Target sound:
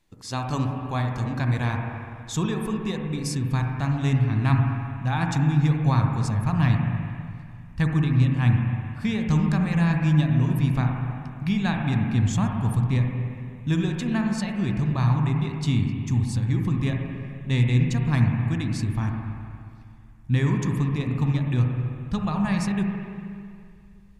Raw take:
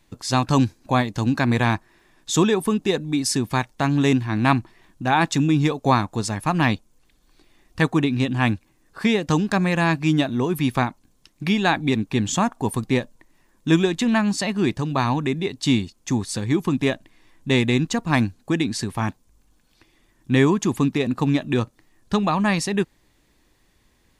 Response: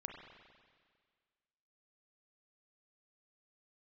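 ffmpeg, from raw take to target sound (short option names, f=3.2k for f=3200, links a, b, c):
-filter_complex "[0:a]asubboost=boost=11.5:cutoff=110[a];[1:a]atrim=start_sample=2205,asetrate=33957,aresample=44100[b];[a][b]afir=irnorm=-1:irlink=0,volume=-6dB"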